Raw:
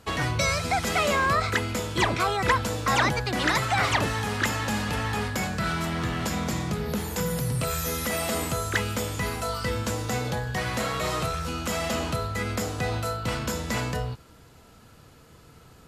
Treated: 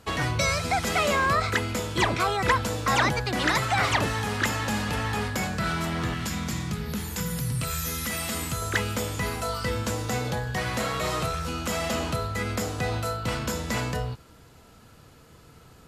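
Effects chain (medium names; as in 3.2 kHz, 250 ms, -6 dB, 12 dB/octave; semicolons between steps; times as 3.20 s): 6.14–8.62 s: peaking EQ 570 Hz -9.5 dB 1.6 oct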